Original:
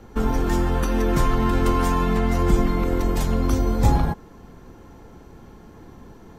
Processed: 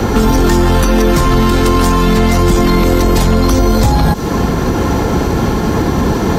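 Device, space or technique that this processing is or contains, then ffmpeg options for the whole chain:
mastering chain: -filter_complex "[0:a]highpass=44,equalizer=f=4500:t=o:w=0.77:g=3.5,acrossover=split=430|3200[s0][s1][s2];[s0]acompressor=threshold=0.0282:ratio=4[s3];[s1]acompressor=threshold=0.01:ratio=4[s4];[s2]acompressor=threshold=0.00501:ratio=4[s5];[s3][s4][s5]amix=inputs=3:normalize=0,acompressor=threshold=0.02:ratio=2,asoftclip=type=tanh:threshold=0.0447,asoftclip=type=hard:threshold=0.0316,alimiter=level_in=59.6:limit=0.891:release=50:level=0:latency=1,volume=0.708"

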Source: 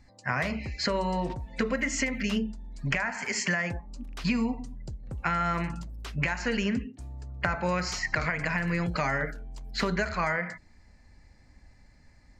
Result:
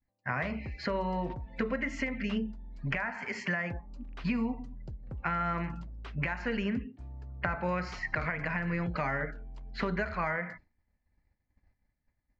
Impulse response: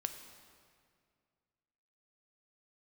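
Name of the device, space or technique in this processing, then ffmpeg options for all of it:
hearing-loss simulation: -af "lowpass=2700,agate=range=0.0224:threshold=0.00708:ratio=3:detection=peak,volume=0.668"

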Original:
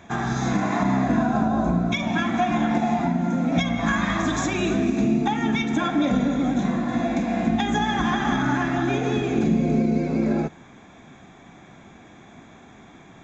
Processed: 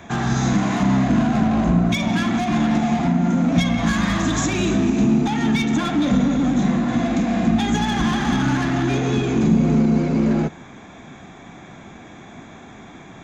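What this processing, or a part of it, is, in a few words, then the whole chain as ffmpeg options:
one-band saturation: -filter_complex "[0:a]acrossover=split=250|3900[s0][s1][s2];[s1]asoftclip=type=tanh:threshold=0.0316[s3];[s0][s3][s2]amix=inputs=3:normalize=0,volume=2.11"

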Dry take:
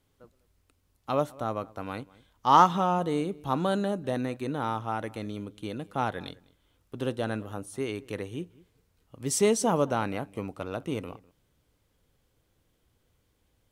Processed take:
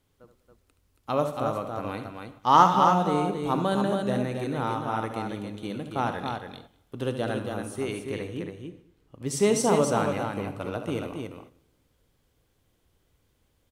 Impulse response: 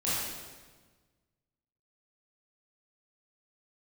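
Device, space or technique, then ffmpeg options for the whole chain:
keyed gated reverb: -filter_complex "[0:a]asettb=1/sr,asplit=3[s0][s1][s2];[s0]atrim=end=7.994[s3];[s1]atrim=start=7.99:end=9.46,asetpts=PTS-STARTPTS,afade=t=in:d=0.004:c=qsin,afade=t=out:st=1.466:d=0.004:c=qsin,highshelf=f=4900:g=-7.5[s4];[s2]atrim=start=9.456[s5];[s3][s4]acrossfade=d=0.004:c1=hsin:c2=qsin[s6];[s6][s5]acrossfade=d=0.004:c1=qsin:c2=hsin,asplit=3[s7][s8][s9];[1:a]atrim=start_sample=2205[s10];[s8][s10]afir=irnorm=-1:irlink=0[s11];[s9]apad=whole_len=604764[s12];[s11][s12]sidechaingate=range=0.2:threshold=0.00501:ratio=16:detection=peak,volume=0.119[s13];[s7][s13]amix=inputs=2:normalize=0,aecho=1:1:72.89|277:0.316|0.562"

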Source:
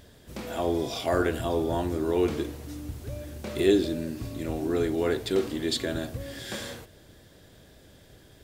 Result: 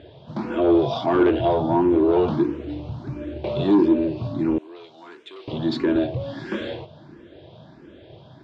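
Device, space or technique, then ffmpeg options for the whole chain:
barber-pole phaser into a guitar amplifier: -filter_complex "[0:a]asplit=2[s0][s1];[s1]afreqshift=1.5[s2];[s0][s2]amix=inputs=2:normalize=1,asoftclip=type=tanh:threshold=0.0531,highpass=84,equalizer=f=140:t=q:w=4:g=8,equalizer=f=220:t=q:w=4:g=3,equalizer=f=340:t=q:w=4:g=10,equalizer=f=640:t=q:w=4:g=6,equalizer=f=940:t=q:w=4:g=7,equalizer=f=1900:t=q:w=4:g=-6,lowpass=f=3700:w=0.5412,lowpass=f=3700:w=1.3066,asettb=1/sr,asplit=3[s3][s4][s5];[s3]atrim=end=4.584[s6];[s4]atrim=start=4.58:end=5.48,asetpts=PTS-STARTPTS,afade=t=in:d=0.004:c=qsin,afade=t=out:st=0.896:d=0.004:c=qsin,aderivative[s7];[s5]atrim=start=5.476[s8];[s6][s7]acrossfade=d=0.004:c1=hsin:c2=qsin[s9];[s9][s8]acrossfade=d=0.004:c1=qsin:c2=hsin,volume=2.51"

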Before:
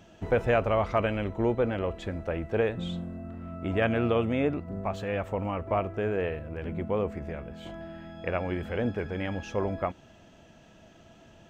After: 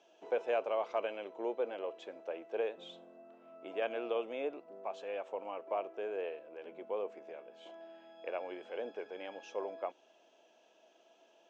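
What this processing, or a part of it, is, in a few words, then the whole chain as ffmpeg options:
phone speaker on a table: -af "highpass=f=390:w=0.5412,highpass=f=390:w=1.3066,equalizer=f=1300:t=q:w=4:g=-7,equalizer=f=1900:t=q:w=4:g=-10,equalizer=f=4400:t=q:w=4:g=-4,lowpass=f=6500:w=0.5412,lowpass=f=6500:w=1.3066,volume=0.447"

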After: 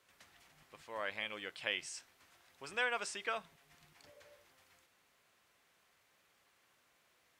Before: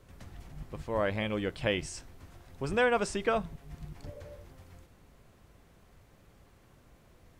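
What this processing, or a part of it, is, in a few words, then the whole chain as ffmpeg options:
filter by subtraction: -filter_complex "[0:a]asplit=2[s0][s1];[s1]lowpass=2300,volume=-1[s2];[s0][s2]amix=inputs=2:normalize=0,volume=0.596"

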